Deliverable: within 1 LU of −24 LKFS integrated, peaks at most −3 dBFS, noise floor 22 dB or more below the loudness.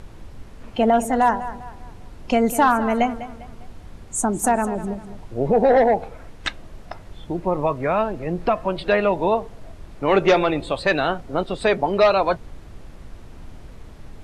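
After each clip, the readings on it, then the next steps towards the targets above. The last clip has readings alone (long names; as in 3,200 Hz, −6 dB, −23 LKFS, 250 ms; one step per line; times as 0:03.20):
background noise floor −42 dBFS; target noise floor −43 dBFS; integrated loudness −21.0 LKFS; sample peak −7.0 dBFS; target loudness −24.0 LKFS
→ noise reduction from a noise print 6 dB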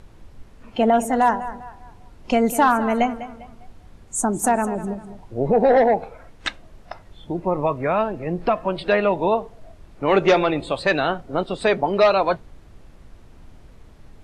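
background noise floor −48 dBFS; integrated loudness −21.0 LKFS; sample peak −7.0 dBFS; target loudness −24.0 LKFS
→ level −3 dB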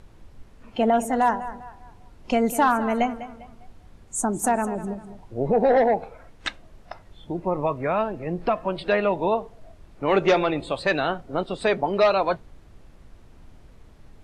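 integrated loudness −24.0 LKFS; sample peak −10.0 dBFS; background noise floor −51 dBFS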